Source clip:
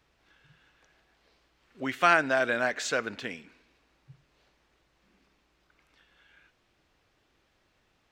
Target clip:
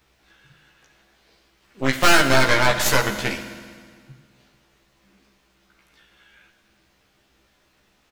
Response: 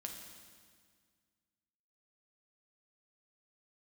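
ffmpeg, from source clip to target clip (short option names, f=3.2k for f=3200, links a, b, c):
-filter_complex "[0:a]crystalizer=i=1:c=0,volume=13.5dB,asoftclip=hard,volume=-13.5dB,aeval=exprs='0.224*(cos(1*acos(clip(val(0)/0.224,-1,1)))-cos(1*PI/2))+0.0794*(cos(6*acos(clip(val(0)/0.224,-1,1)))-cos(6*PI/2))':c=same,asplit=2[a][b];[b]adelay=15,volume=-2dB[c];[a][c]amix=inputs=2:normalize=0,asplit=2[d][e];[1:a]atrim=start_sample=2205[f];[e][f]afir=irnorm=-1:irlink=0,volume=5.5dB[g];[d][g]amix=inputs=2:normalize=0,volume=-2.5dB"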